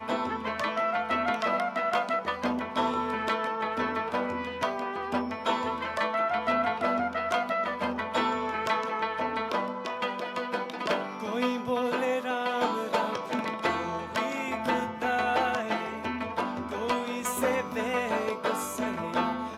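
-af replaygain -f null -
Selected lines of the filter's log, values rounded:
track_gain = +10.8 dB
track_peak = 0.115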